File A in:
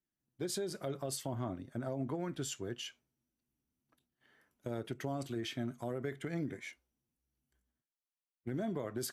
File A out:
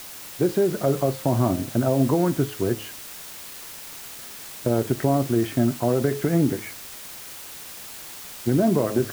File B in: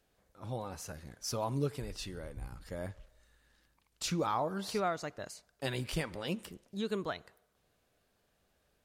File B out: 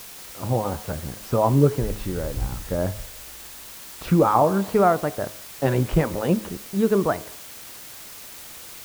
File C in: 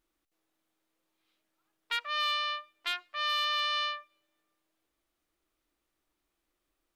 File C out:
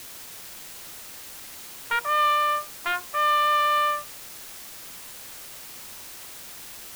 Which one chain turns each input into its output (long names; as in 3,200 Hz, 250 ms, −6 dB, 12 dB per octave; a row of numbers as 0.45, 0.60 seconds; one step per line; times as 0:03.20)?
low-pass filter 1,200 Hz 12 dB per octave
hum removal 105.7 Hz, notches 11
in parallel at −5 dB: bit-depth reduction 8 bits, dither triangular
on the sum: loudness normalisation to −23 LKFS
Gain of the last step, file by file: +14.0, +12.5, +11.5 decibels